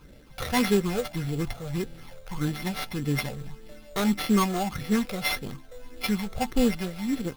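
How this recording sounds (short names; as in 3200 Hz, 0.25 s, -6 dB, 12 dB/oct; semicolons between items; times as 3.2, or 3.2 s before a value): a buzz of ramps at a fixed pitch in blocks of 8 samples; phasing stages 12, 1.7 Hz, lowest notch 280–1100 Hz; aliases and images of a low sample rate 7600 Hz, jitter 0%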